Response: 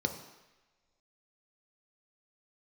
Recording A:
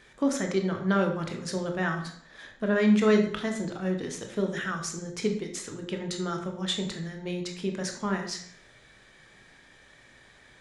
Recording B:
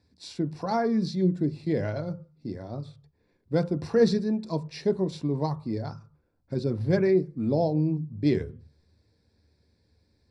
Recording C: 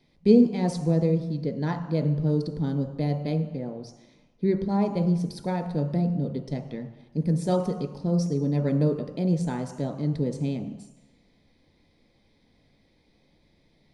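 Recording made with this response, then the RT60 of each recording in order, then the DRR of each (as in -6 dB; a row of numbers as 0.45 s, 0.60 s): C; 0.60 s, 0.40 s, no single decay rate; 3.5 dB, 9.5 dB, 5.0 dB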